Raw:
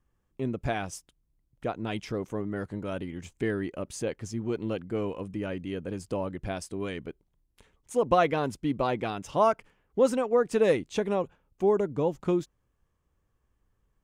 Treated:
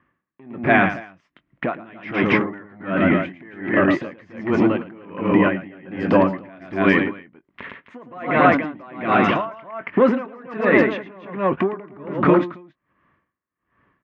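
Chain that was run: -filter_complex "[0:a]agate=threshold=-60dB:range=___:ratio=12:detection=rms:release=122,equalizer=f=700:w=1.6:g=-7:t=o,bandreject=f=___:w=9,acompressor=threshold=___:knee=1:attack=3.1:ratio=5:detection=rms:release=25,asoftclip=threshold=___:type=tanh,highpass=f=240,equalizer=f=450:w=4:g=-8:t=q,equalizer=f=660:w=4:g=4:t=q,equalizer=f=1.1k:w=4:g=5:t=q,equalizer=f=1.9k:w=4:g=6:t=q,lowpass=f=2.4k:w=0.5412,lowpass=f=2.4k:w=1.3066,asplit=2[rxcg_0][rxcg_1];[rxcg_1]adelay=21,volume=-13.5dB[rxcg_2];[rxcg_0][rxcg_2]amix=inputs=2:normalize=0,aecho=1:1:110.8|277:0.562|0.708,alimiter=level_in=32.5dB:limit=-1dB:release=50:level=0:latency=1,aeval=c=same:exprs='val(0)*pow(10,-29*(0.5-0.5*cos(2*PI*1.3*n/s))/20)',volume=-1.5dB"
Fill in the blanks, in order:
-11dB, 810, -39dB, -33.5dB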